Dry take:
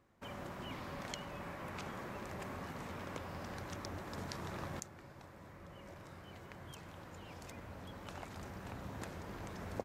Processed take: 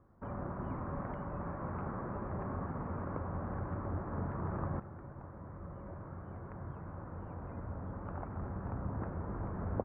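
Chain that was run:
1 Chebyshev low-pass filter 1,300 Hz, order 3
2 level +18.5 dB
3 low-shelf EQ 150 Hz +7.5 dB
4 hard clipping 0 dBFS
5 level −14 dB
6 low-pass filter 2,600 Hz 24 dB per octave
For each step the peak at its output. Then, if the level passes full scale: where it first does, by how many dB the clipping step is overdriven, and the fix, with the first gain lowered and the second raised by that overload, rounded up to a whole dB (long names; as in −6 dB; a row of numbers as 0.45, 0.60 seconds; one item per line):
−23.0, −4.5, −4.0, −4.0, −18.0, −18.0 dBFS
no step passes full scale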